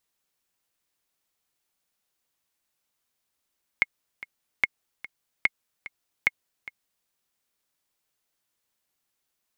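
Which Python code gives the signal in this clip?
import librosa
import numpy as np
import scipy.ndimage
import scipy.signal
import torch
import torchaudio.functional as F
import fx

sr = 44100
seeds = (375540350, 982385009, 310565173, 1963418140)

y = fx.click_track(sr, bpm=147, beats=2, bars=4, hz=2160.0, accent_db=17.5, level_db=-6.5)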